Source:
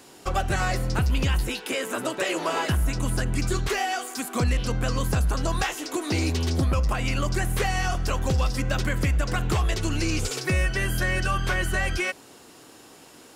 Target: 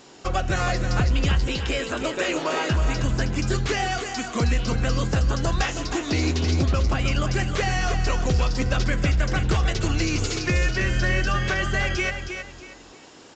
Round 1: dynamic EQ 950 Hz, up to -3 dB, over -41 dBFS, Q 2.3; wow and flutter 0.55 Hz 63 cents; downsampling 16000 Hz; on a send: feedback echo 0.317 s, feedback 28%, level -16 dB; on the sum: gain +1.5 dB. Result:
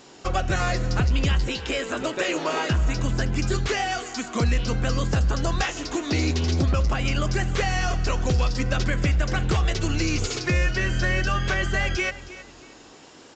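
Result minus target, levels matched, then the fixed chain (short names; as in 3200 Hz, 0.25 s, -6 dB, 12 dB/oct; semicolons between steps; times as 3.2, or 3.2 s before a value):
echo-to-direct -8.5 dB
dynamic EQ 950 Hz, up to -3 dB, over -41 dBFS, Q 2.3; wow and flutter 0.55 Hz 63 cents; downsampling 16000 Hz; on a send: feedback echo 0.317 s, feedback 28%, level -7.5 dB; on the sum: gain +1.5 dB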